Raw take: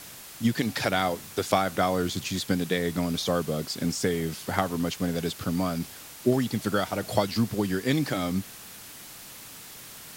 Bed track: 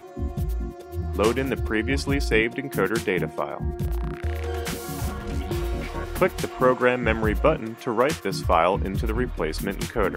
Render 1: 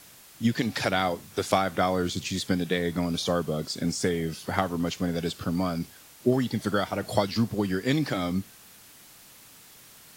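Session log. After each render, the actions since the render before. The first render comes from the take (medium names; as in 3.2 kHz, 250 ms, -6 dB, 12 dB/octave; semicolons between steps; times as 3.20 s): noise print and reduce 7 dB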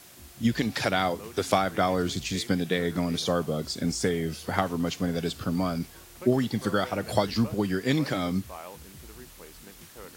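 add bed track -22.5 dB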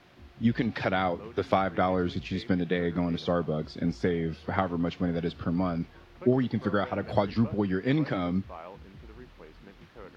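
distance through air 310 m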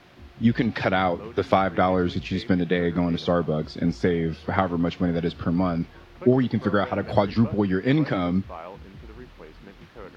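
trim +5 dB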